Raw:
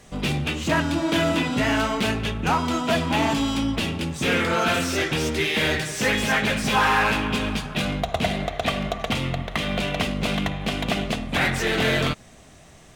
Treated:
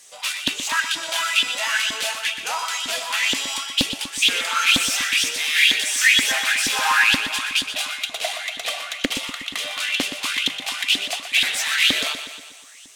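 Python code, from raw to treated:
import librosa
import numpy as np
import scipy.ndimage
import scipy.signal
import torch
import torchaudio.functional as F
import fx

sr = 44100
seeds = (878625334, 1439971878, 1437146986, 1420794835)

p1 = fx.peak_eq(x, sr, hz=9600.0, db=12.0, octaves=2.4)
p2 = fx.cheby_harmonics(p1, sr, harmonics=(5,), levels_db=(-32,), full_scale_db=-7.0)
p3 = fx.tone_stack(p2, sr, knobs='10-0-10')
p4 = fx.filter_lfo_highpass(p3, sr, shape='saw_up', hz=2.1, low_hz=260.0, high_hz=3500.0, q=5.6)
p5 = p4 + fx.echo_feedback(p4, sr, ms=122, feedback_pct=56, wet_db=-10.0, dry=0)
p6 = fx.doppler_dist(p5, sr, depth_ms=0.55)
y = p6 * 10.0 ** (-1.5 / 20.0)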